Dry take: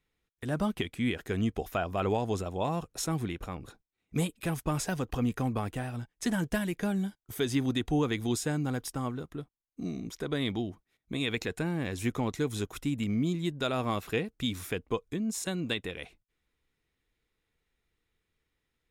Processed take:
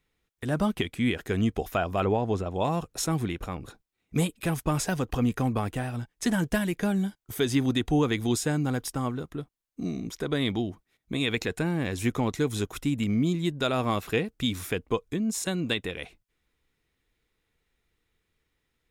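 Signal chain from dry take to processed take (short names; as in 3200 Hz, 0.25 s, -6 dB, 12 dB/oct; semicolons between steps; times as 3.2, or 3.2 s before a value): 2.04–2.54 LPF 1300 Hz -> 2700 Hz 6 dB/oct; gain +4 dB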